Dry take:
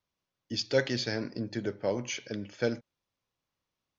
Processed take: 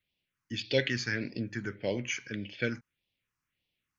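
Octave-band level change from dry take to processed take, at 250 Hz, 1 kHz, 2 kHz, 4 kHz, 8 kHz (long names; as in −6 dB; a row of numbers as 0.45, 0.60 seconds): −1.5 dB, −5.5 dB, +3.5 dB, −1.0 dB, can't be measured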